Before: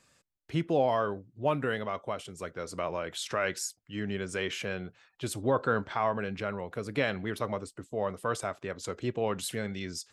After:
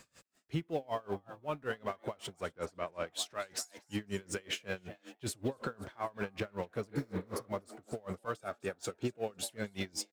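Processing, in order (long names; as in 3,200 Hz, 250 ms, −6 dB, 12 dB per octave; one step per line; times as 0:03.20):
mu-law and A-law mismatch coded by mu
0:02.53–0:03.05: high-shelf EQ 5,000 Hz → 9,500 Hz −12 dB
0:06.94–0:07.43: healed spectral selection 290–4,200 Hz both
brickwall limiter −24 dBFS, peak gain reduction 9 dB
0:08.36–0:09.47: notch comb filter 1,000 Hz
echo with shifted repeats 252 ms, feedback 41%, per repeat +120 Hz, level −14 dB
tremolo with a sine in dB 5.3 Hz, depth 29 dB
level +1 dB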